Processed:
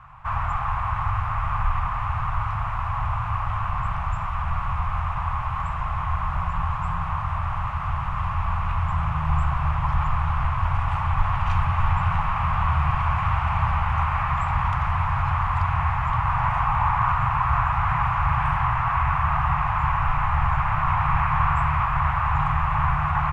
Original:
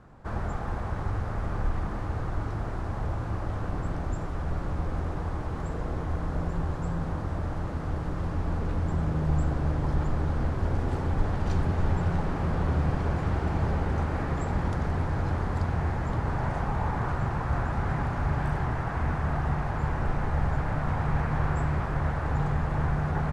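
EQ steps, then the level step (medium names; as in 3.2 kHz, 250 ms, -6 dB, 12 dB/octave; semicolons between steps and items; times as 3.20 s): FFT filter 130 Hz 0 dB, 310 Hz -28 dB, 440 Hz -27 dB, 670 Hz -4 dB, 1.1 kHz +14 dB, 1.6 kHz +2 dB, 2.6 kHz +11 dB, 4.3 kHz -7 dB; +4.0 dB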